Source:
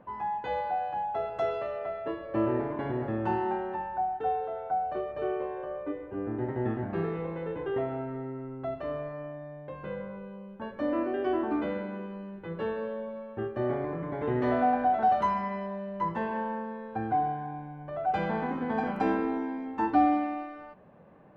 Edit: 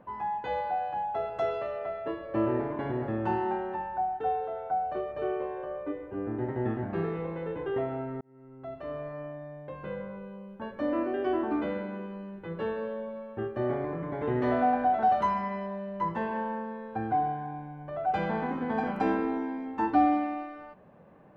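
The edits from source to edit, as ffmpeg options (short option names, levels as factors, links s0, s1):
-filter_complex "[0:a]asplit=2[s0][s1];[s0]atrim=end=8.21,asetpts=PTS-STARTPTS,afade=t=out:st=8.206:d=0.004:c=hsin[s2];[s1]atrim=start=8.21,asetpts=PTS-STARTPTS,afade=t=in:d=0.97[s3];[s2][s3]concat=n=2:v=0:a=1"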